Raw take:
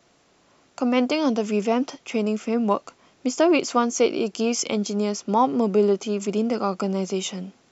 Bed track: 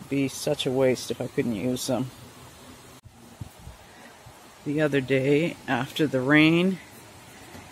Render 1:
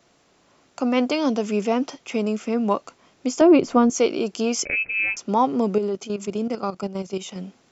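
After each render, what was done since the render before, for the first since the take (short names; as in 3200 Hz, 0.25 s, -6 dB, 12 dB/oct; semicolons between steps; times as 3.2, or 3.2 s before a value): 3.41–3.9 tilt -3.5 dB/oct; 4.65–5.17 inverted band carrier 2800 Hz; 5.78–7.36 level quantiser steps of 12 dB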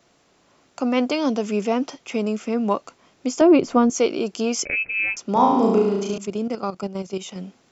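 5.32–6.18 flutter echo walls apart 6.1 m, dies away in 0.97 s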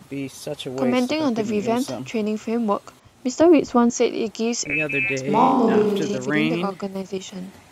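add bed track -4 dB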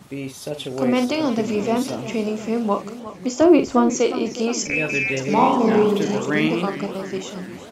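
doubler 45 ms -9 dB; warbling echo 0.359 s, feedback 63%, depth 147 cents, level -14 dB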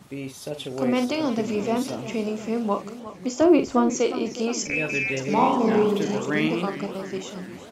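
gain -3.5 dB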